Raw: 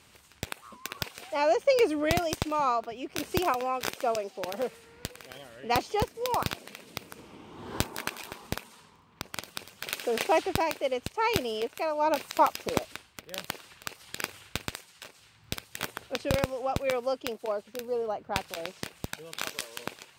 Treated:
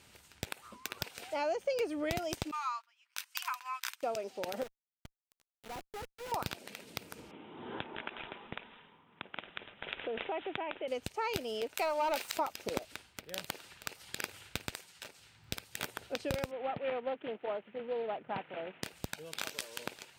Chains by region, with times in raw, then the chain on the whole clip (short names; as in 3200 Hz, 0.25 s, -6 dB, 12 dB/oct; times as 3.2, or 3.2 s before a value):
2.51–4.03 Chebyshev high-pass 1000 Hz, order 5 + gate -43 dBFS, range -18 dB
4.63–6.32 CVSD 16 kbps + sample gate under -35 dBFS + tube stage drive 39 dB, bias 0.55
7.31–10.88 HPF 170 Hz + compressor 2:1, threshold -35 dBFS + careless resampling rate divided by 6×, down none, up filtered
11.76–12.37 HPF 820 Hz 6 dB/oct + sample leveller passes 3
16.51–18.83 CVSD 16 kbps + HPF 130 Hz 24 dB/oct + Doppler distortion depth 0.42 ms
whole clip: notch 1100 Hz, Q 9; compressor 2.5:1, threshold -32 dBFS; gain -2 dB